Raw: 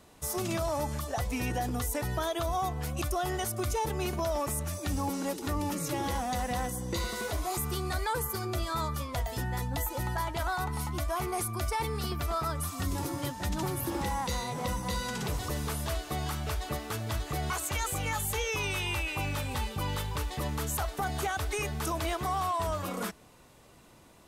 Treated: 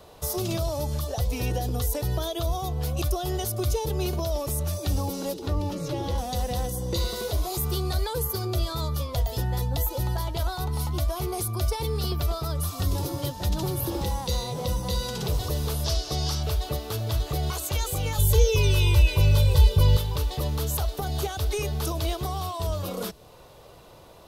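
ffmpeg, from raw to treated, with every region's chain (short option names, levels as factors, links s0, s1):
-filter_complex "[0:a]asettb=1/sr,asplit=3[s0][s1][s2];[s0]atrim=end=5.344[s3];[s1]atrim=start=5.34:end=6.18,asetpts=PTS-STARTPTS,afade=t=in:d=0.004:c=qsin,afade=t=out:st=0.836:d=0.004:c=qsin,acrossover=split=8600[s4][s5];[s5]acompressor=threshold=0.00355:ratio=4:attack=1:release=60[s6];[s4][s6]amix=inputs=2:normalize=0,highshelf=f=5000:g=-10[s7];[s2]atrim=start=6.176[s8];[s3][s7]acrossfade=d=0.004:c1=hsin:c2=qsin[s9];[s9][s8]acrossfade=d=0.004:c1=qsin:c2=hsin,asettb=1/sr,asplit=3[s10][s11][s12];[s10]atrim=end=15.844[s13];[s11]atrim=start=15.84:end=16.43,asetpts=PTS-STARTPTS,afade=t=in:d=0.004:c=qsin,afade=t=out:st=0.586:d=0.004:c=qsin,lowpass=11000,equalizer=f=5400:w=2.1:g=12.5[s14];[s12]atrim=start=16.426[s15];[s13][s14]acrossfade=d=0.004:c1=hsin:c2=qsin[s16];[s16][s15]acrossfade=d=0.004:c1=qsin:c2=hsin,asettb=1/sr,asplit=3[s17][s18][s19];[s17]atrim=end=18.184[s20];[s18]atrim=start=18.18:end=19.97,asetpts=PTS-STARTPTS,afade=t=in:d=0.004:c=qsin,afade=t=out:st=1.786:d=0.004:c=qsin,lowshelf=f=250:g=6.5,aecho=1:1:2:0.89,atrim=end_sample=78939[s21];[s19]atrim=start=19.966[s22];[s20][s21]acrossfade=d=0.004:c1=hsin:c2=qsin[s23];[s23][s22]acrossfade=d=0.004:c1=qsin:c2=hsin,equalizer=f=250:t=o:w=1:g=-10,equalizer=f=500:t=o:w=1:g=6,equalizer=f=2000:t=o:w=1:g=-7,equalizer=f=4000:t=o:w=1:g=3,equalizer=f=8000:t=o:w=1:g=-9,acrossover=split=390|3000[s24][s25][s26];[s25]acompressor=threshold=0.00316:ratio=2.5[s27];[s24][s27][s26]amix=inputs=3:normalize=0,volume=2.66"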